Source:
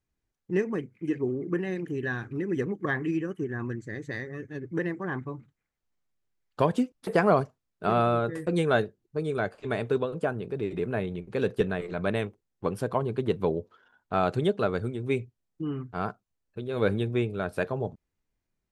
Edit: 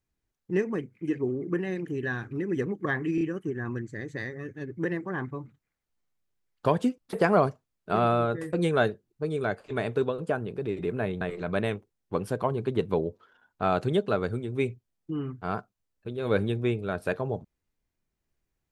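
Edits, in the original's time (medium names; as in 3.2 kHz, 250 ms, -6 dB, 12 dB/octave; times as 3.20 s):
3.15 s: stutter 0.03 s, 3 plays
11.15–11.72 s: delete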